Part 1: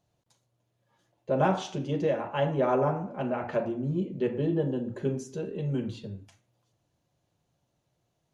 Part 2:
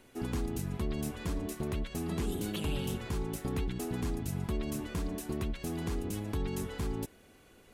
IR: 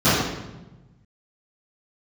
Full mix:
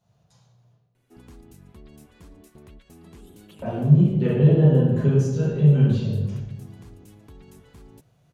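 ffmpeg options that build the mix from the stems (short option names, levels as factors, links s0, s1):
-filter_complex "[0:a]equalizer=f=290:w=1.8:g=-14.5,volume=0.841,asplit=3[s0][s1][s2];[s0]atrim=end=0.74,asetpts=PTS-STARTPTS,afade=t=out:st=0.736:d=0.004:c=hsin[s3];[s1]atrim=start=0.74:end=3.62,asetpts=PTS-STARTPTS,volume=0[s4];[s2]atrim=start=3.62,asetpts=PTS-STARTPTS,afade=t=in:d=0.004:c=hsin[s5];[s3][s4][s5]concat=n=3:v=0:a=1,asplit=3[s6][s7][s8];[s7]volume=0.237[s9];[1:a]adelay=950,volume=0.224[s10];[s8]apad=whole_len=382950[s11];[s10][s11]sidechaincompress=threshold=0.0112:ratio=8:attack=16:release=411[s12];[2:a]atrim=start_sample=2205[s13];[s9][s13]afir=irnorm=-1:irlink=0[s14];[s6][s12][s14]amix=inputs=3:normalize=0"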